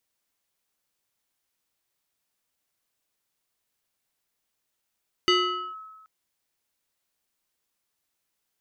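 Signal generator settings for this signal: FM tone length 0.78 s, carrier 1290 Hz, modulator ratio 1.28, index 1.7, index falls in 0.47 s linear, decay 1.32 s, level -15.5 dB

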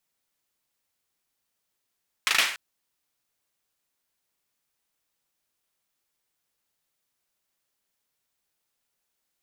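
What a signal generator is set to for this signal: hand clap length 0.29 s, bursts 4, apart 38 ms, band 2100 Hz, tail 0.47 s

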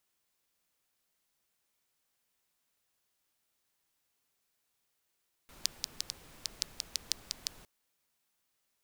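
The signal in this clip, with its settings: rain from filtered ticks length 2.16 s, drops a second 5.2, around 4900 Hz, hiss -13 dB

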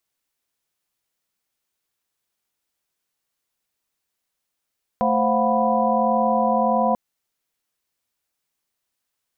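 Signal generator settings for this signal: chord A3/C5/F5/F#5/B5 sine, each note -23 dBFS 1.94 s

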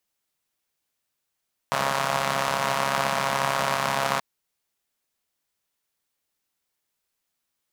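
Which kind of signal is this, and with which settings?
four-cylinder engine model, steady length 2.48 s, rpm 4100, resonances 200/660/980 Hz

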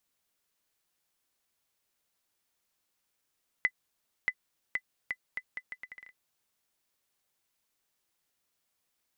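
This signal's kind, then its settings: bouncing ball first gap 0.63 s, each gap 0.75, 2010 Hz, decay 60 ms -14.5 dBFS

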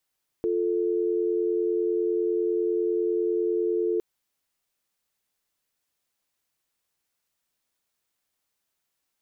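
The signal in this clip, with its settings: call progress tone dial tone, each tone -25 dBFS 3.56 s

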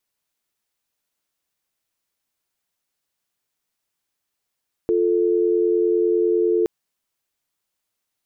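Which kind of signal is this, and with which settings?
call progress tone dial tone, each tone -18.5 dBFS 1.77 s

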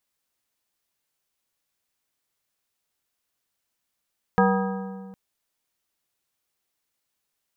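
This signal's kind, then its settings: metal hit plate, length 0.76 s, lowest mode 192 Hz, modes 6, decay 2.01 s, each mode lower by 1.5 dB, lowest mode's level -18 dB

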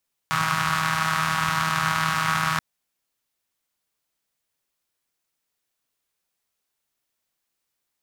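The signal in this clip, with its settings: four-cylinder engine model, steady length 2.28 s, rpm 4800, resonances 140/1200 Hz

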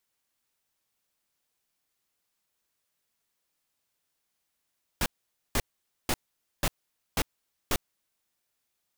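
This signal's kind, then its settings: noise bursts pink, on 0.05 s, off 0.49 s, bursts 6, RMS -25.5 dBFS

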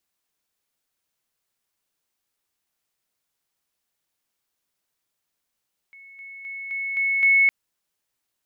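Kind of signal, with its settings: level ladder 2200 Hz -43.5 dBFS, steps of 6 dB, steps 6, 0.26 s 0.00 s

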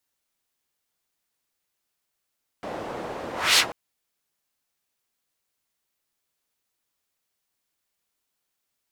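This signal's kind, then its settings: whoosh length 1.09 s, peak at 0.95, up 0.26 s, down 0.10 s, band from 600 Hz, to 4100 Hz, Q 1.2, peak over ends 17.5 dB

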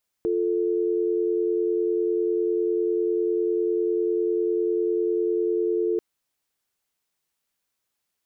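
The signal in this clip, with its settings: call progress tone dial tone, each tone -23.5 dBFS 5.74 s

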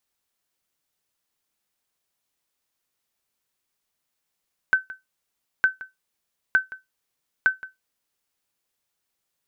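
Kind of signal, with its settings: sonar ping 1530 Hz, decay 0.17 s, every 0.91 s, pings 4, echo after 0.17 s, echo -18.5 dB -9.5 dBFS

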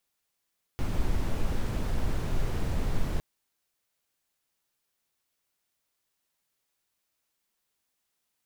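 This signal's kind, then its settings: noise brown, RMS -26 dBFS 2.41 s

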